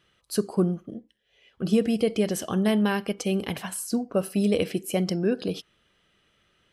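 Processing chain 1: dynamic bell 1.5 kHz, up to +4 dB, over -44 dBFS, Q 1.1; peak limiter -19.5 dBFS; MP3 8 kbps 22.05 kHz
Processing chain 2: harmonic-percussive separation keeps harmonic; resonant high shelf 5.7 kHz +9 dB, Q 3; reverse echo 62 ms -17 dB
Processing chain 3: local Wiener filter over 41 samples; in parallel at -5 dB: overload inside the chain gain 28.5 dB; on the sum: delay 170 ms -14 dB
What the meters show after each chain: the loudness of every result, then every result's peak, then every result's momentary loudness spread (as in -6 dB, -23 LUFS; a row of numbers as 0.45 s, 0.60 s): -31.0 LUFS, -27.0 LUFS, -25.0 LUFS; -18.0 dBFS, -12.0 dBFS, -10.0 dBFS; 8 LU, 12 LU, 10 LU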